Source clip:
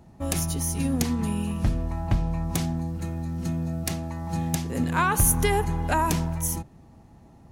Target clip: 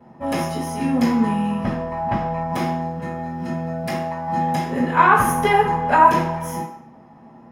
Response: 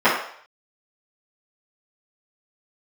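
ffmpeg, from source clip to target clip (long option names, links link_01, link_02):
-filter_complex "[1:a]atrim=start_sample=2205[link_01];[0:a][link_01]afir=irnorm=-1:irlink=0,volume=-14.5dB"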